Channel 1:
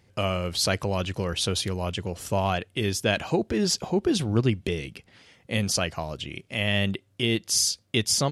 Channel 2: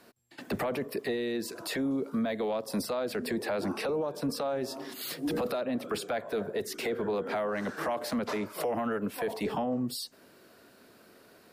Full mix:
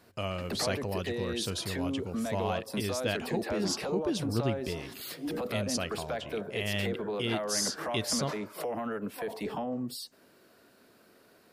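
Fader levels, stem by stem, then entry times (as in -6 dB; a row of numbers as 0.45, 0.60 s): -8.0, -3.5 dB; 0.00, 0.00 s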